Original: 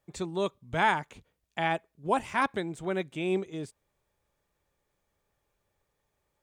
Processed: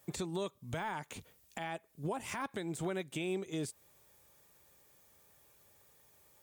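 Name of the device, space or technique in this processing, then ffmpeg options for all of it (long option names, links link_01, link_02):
podcast mastering chain: -af "highpass=71,aemphasis=mode=production:type=50kf,deesser=0.9,acompressor=threshold=-43dB:ratio=2.5,alimiter=level_in=12dB:limit=-24dB:level=0:latency=1:release=191,volume=-12dB,volume=8.5dB" -ar 48000 -c:a libmp3lame -b:a 96k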